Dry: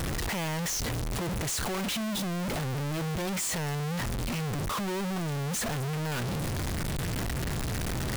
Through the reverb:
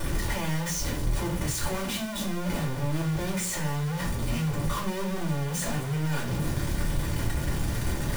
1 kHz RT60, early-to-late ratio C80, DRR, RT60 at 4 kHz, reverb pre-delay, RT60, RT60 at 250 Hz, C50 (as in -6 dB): 0.35 s, 13.5 dB, -7.0 dB, 0.35 s, 3 ms, 0.45 s, 0.65 s, 9.0 dB